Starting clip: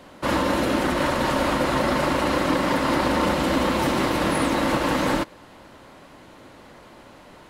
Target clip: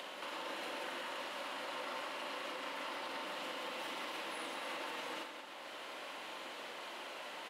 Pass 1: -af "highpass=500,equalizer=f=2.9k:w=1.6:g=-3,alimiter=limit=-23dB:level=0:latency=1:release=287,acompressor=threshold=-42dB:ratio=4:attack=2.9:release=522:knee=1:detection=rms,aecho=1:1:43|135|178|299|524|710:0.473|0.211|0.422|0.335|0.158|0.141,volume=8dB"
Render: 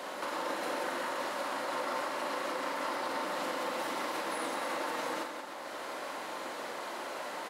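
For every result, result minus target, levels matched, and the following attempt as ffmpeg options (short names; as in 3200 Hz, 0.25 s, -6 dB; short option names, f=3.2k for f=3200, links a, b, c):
compressor: peak gain reduction -8 dB; 4000 Hz band -5.0 dB
-af "highpass=500,equalizer=f=2.9k:w=1.6:g=-3,alimiter=limit=-23dB:level=0:latency=1:release=287,acompressor=threshold=-52.5dB:ratio=4:attack=2.9:release=522:knee=1:detection=rms,aecho=1:1:43|135|178|299|524|710:0.473|0.211|0.422|0.335|0.158|0.141,volume=8dB"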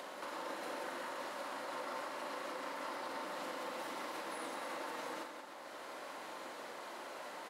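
4000 Hz band -5.0 dB
-af "highpass=500,equalizer=f=2.9k:w=1.6:g=7.5,alimiter=limit=-23dB:level=0:latency=1:release=287,acompressor=threshold=-52.5dB:ratio=4:attack=2.9:release=522:knee=1:detection=rms,aecho=1:1:43|135|178|299|524|710:0.473|0.211|0.422|0.335|0.158|0.141,volume=8dB"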